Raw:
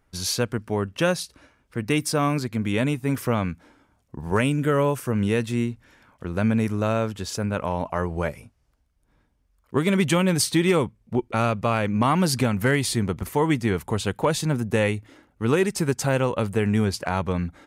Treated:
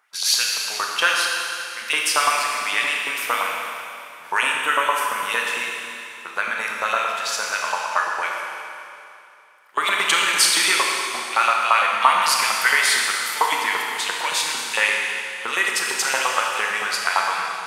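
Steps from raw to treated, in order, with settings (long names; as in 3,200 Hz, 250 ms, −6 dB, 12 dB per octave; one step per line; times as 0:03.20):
auto-filter high-pass saw up 8.8 Hz 890–3,800 Hz
four-comb reverb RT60 2.7 s, combs from 26 ms, DRR −1 dB
level +4.5 dB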